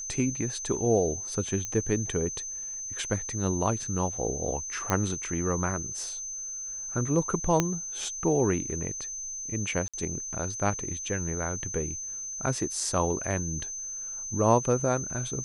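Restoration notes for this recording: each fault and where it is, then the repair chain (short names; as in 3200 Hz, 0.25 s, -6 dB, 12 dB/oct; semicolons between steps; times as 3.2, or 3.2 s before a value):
tone 6200 Hz -34 dBFS
1.65 pop -19 dBFS
4.9 pop -11 dBFS
7.6 pop -9 dBFS
9.88–9.94 gap 56 ms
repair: de-click; notch 6200 Hz, Q 30; interpolate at 9.88, 56 ms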